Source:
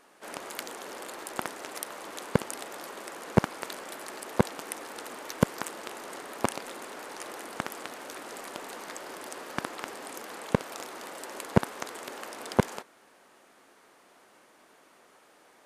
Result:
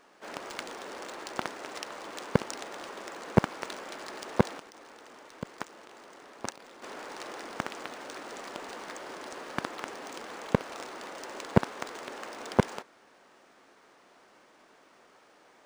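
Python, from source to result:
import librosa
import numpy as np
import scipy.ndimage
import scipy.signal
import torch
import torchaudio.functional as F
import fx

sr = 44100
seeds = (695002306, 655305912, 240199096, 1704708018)

y = fx.level_steps(x, sr, step_db=17, at=(4.58, 6.82), fade=0.02)
y = np.interp(np.arange(len(y)), np.arange(len(y))[::3], y[::3])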